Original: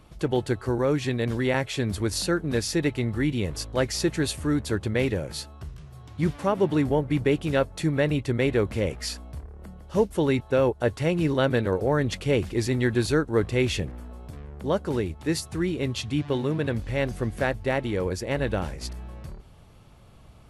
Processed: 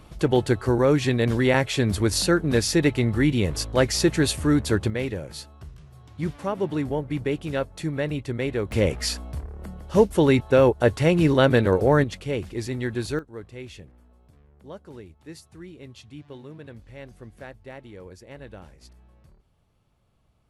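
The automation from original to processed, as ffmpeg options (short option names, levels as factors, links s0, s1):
-af "asetnsamples=n=441:p=0,asendcmd='4.9 volume volume -3.5dB;8.72 volume volume 5dB;12.04 volume volume -4.5dB;13.19 volume volume -15.5dB',volume=1.68"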